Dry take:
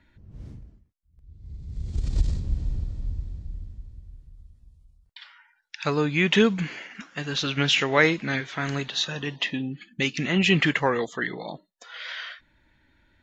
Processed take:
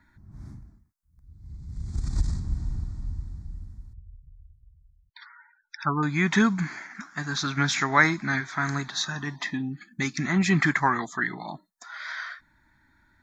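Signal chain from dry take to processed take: bass shelf 130 Hz -8.5 dB; static phaser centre 1.2 kHz, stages 4; 3.93–6.03 s: spectral gate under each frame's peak -15 dB strong; trim +5 dB

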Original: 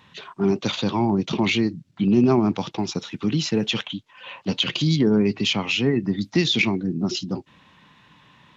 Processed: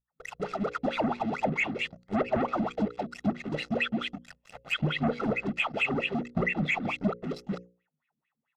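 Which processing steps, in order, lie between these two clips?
delay that grows with frequency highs late, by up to 361 ms; on a send: delay 174 ms -4.5 dB; on the sum: wah-wah 4.5 Hz 220–2500 Hz, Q 9.4; hum 60 Hz, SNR 34 dB; waveshaping leveller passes 5; peaking EQ 150 Hz +14 dB 0.2 oct; harmonic-percussive split harmonic -7 dB; hum notches 60/120/180/240/300/360/420/480/540 Hz; comb 1.5 ms, depth 58%; low-pass that closes with the level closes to 2.5 kHz, closed at -17 dBFS; trim -6.5 dB

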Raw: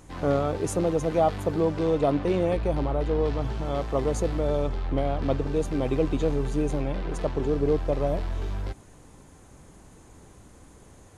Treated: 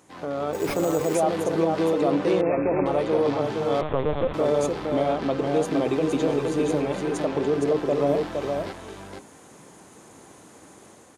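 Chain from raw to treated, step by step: high-pass 210 Hz 12 dB/octave; hum notches 60/120/180/240/300/360/420/480/540 Hz; peak limiter -19.5 dBFS, peak gain reduction 7.5 dB; level rider gain up to 7 dB; delay 465 ms -4 dB; 0.53–1.15 s: careless resampling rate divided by 6×, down none, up hold; 2.41–2.86 s: brick-wall FIR low-pass 2.7 kHz; 3.81–4.34 s: LPC vocoder at 8 kHz pitch kept; trim -2 dB

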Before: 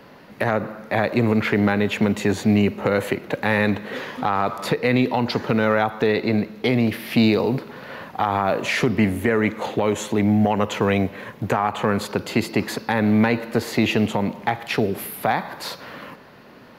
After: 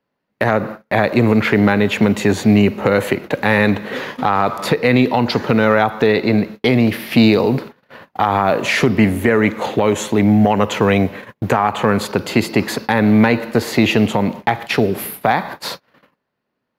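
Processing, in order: gate -33 dBFS, range -35 dB; trim +5.5 dB

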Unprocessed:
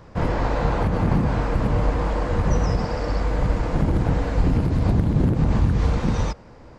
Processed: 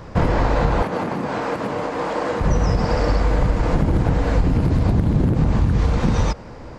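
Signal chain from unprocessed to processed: compression, threshold -22 dBFS, peak gain reduction 9 dB; 0.82–2.41 s: high-pass 280 Hz 12 dB/octave; trim +8.5 dB

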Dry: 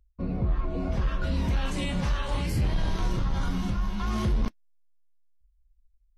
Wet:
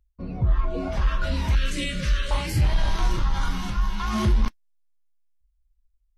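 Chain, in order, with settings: spectral noise reduction 9 dB; 1.55–2.31 s: Butterworth band-stop 860 Hz, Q 0.92; trim +6 dB

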